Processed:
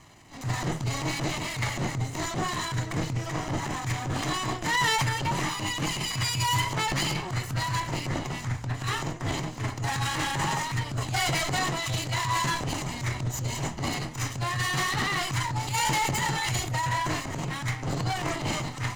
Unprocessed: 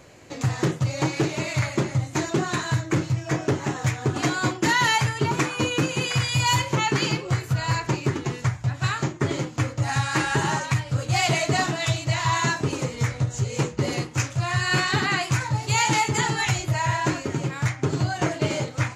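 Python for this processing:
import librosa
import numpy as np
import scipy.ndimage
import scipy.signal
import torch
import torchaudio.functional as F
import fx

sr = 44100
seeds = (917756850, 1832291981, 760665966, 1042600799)

y = fx.lower_of_two(x, sr, delay_ms=1.0)
y = fx.transient(y, sr, attack_db=-11, sustain_db=6)
y = y * librosa.db_to_amplitude(-2.5)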